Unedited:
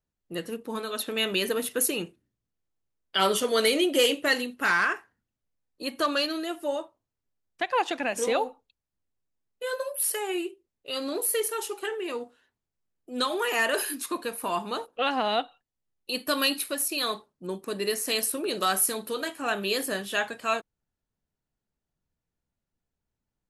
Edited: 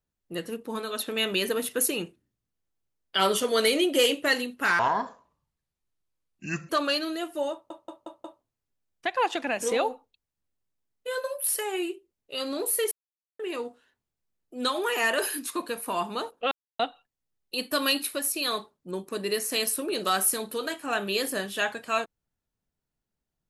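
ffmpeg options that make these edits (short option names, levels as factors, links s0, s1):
-filter_complex "[0:a]asplit=11[s0][s1][s2][s3][s4][s5][s6][s7][s8][s9][s10];[s0]atrim=end=4.794[s11];[s1]atrim=start=4.79:end=5.97,asetpts=PTS-STARTPTS,asetrate=27342,aresample=44100,atrim=end_sample=83932,asetpts=PTS-STARTPTS[s12];[s2]atrim=start=5.966:end=6.982[s13];[s3]atrim=start=6.798:end=6.982[s14];[s4]atrim=start=6.798:end=6.982[s15];[s5]atrim=start=6.798:end=6.982[s16];[s6]atrim=start=6.798:end=11.47,asetpts=PTS-STARTPTS,afade=t=out:st=4.668:d=0.004:c=hsin[s17];[s7]atrim=start=11.47:end=11.95,asetpts=PTS-STARTPTS,volume=0[s18];[s8]atrim=start=11.95:end=15.07,asetpts=PTS-STARTPTS,afade=t=in:d=0.004:c=hsin,afade=t=out:st=3.116:d=0.004:c=hsin[s19];[s9]atrim=start=15.07:end=15.35,asetpts=PTS-STARTPTS,volume=0[s20];[s10]atrim=start=15.35,asetpts=PTS-STARTPTS,afade=t=in:d=0.004:c=hsin[s21];[s11][s12]acrossfade=d=0.004:c1=hsin:c2=hsin[s22];[s22][s13]acrossfade=d=0.004:c1=hsin:c2=hsin[s23];[s23][s14]acrossfade=d=0.004:c1=hsin:c2=hsin[s24];[s24][s15]acrossfade=d=0.004:c1=hsin:c2=hsin[s25];[s25][s16]acrossfade=d=0.004:c1=hsin:c2=hsin[s26];[s17][s18][s19][s20][s21]concat=n=5:v=0:a=1[s27];[s26][s27]acrossfade=d=0.004:c1=hsin:c2=hsin"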